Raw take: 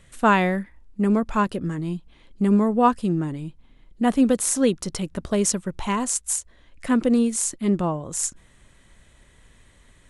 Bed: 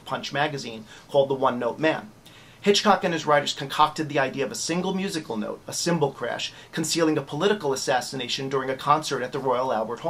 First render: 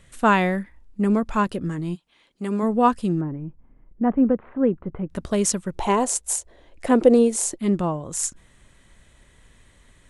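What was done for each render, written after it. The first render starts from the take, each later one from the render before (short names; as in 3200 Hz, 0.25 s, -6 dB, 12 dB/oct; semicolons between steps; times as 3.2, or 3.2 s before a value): 1.94–2.62 HPF 1400 Hz -> 400 Hz 6 dB/oct; 3.21–5.1 Gaussian blur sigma 5.4 samples; 5.76–7.59 band shelf 530 Hz +10 dB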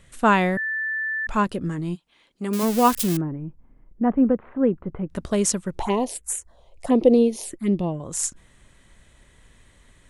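0.57–1.27 bleep 1760 Hz -23.5 dBFS; 2.53–3.17 switching spikes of -15 dBFS; 5.82–8 envelope phaser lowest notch 230 Hz, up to 1500 Hz, full sweep at -18 dBFS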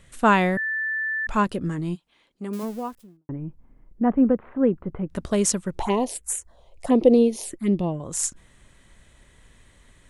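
1.85–3.29 studio fade out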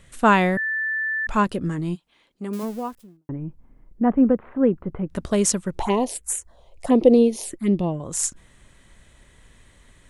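gain +1.5 dB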